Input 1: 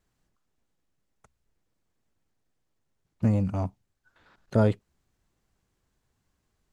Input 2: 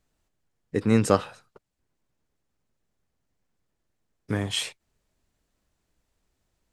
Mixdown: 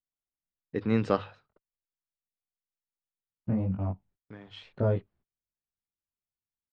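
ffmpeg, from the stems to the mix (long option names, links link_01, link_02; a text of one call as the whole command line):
ffmpeg -i stem1.wav -i stem2.wav -filter_complex "[0:a]lowpass=frequency=1500:poles=1,flanger=delay=20:depth=4.1:speed=1.1,adelay=250,volume=-1dB[link_01];[1:a]bandreject=frequency=50:width_type=h:width=6,bandreject=frequency=100:width_type=h:width=6,volume=-5.5dB,afade=type=out:start_time=1.19:duration=0.63:silence=0.223872[link_02];[link_01][link_02]amix=inputs=2:normalize=0,agate=range=-25dB:threshold=-59dB:ratio=16:detection=peak,lowpass=frequency=4200:width=0.5412,lowpass=frequency=4200:width=1.3066" out.wav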